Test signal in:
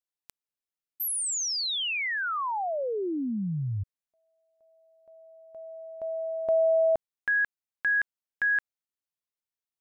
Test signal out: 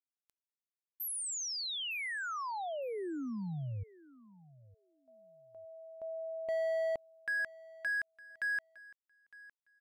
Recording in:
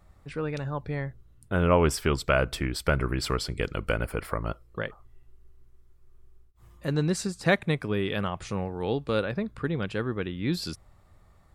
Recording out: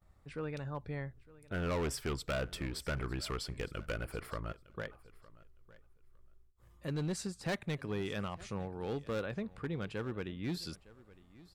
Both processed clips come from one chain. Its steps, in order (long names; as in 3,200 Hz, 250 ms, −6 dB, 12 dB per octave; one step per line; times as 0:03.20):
downward expander −56 dBFS, range −15 dB
gain into a clipping stage and back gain 22.5 dB
on a send: repeating echo 909 ms, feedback 16%, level −20.5 dB
on the sum: level −8.5 dB